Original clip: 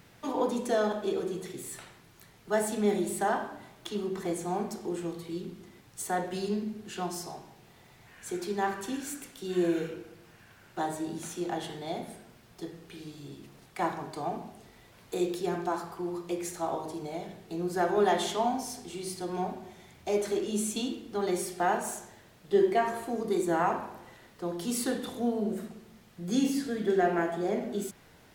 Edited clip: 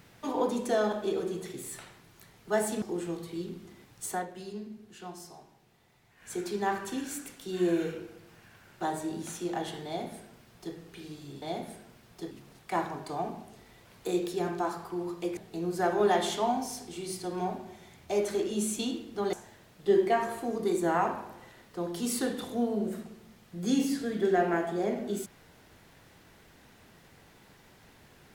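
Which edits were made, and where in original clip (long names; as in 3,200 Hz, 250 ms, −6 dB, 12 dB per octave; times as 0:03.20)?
0:02.82–0:04.78: remove
0:06.08–0:08.26: duck −9 dB, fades 0.14 s
0:11.82–0:12.71: duplicate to 0:13.38
0:16.44–0:17.34: remove
0:21.30–0:21.98: remove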